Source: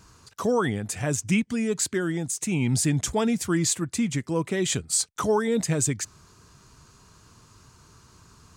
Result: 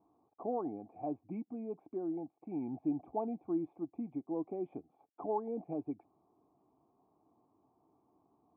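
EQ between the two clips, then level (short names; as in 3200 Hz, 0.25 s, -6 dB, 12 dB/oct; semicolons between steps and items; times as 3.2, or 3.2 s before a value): vocal tract filter u; vowel filter a; +16.0 dB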